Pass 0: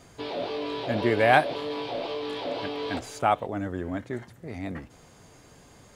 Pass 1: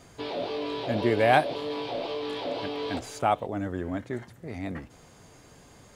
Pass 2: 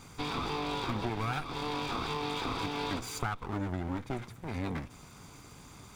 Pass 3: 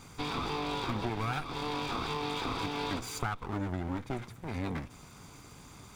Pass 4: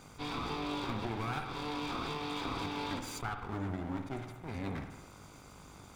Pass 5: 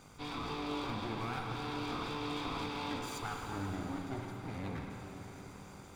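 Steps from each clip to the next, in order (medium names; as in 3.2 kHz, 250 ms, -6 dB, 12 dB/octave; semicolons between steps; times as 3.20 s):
dynamic bell 1.6 kHz, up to -4 dB, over -38 dBFS, Q 1
comb filter that takes the minimum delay 0.84 ms; compression 12:1, threshold -33 dBFS, peak gain reduction 14 dB; trim +3 dB
no audible change
spring tank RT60 1.1 s, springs 51 ms, chirp 25 ms, DRR 6 dB; mains buzz 50 Hz, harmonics 30, -56 dBFS -1 dB/octave; attacks held to a fixed rise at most 300 dB/s; trim -4 dB
plate-style reverb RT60 4.9 s, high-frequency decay 1×, pre-delay 100 ms, DRR 3 dB; trim -3 dB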